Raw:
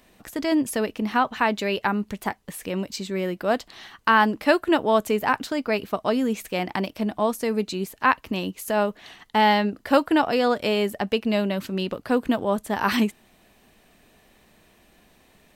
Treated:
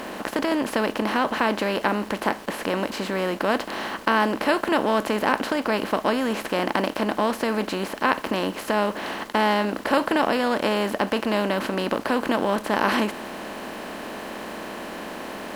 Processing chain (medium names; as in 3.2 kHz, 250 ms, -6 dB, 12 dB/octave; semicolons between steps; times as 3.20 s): spectral levelling over time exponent 0.4; treble shelf 11 kHz -7.5 dB; small samples zeroed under -36 dBFS; trim -6.5 dB